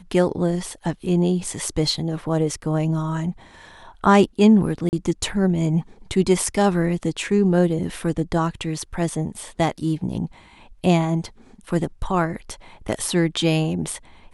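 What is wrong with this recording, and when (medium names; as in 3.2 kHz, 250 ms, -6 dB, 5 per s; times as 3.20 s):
4.89–4.93 s: dropout 39 ms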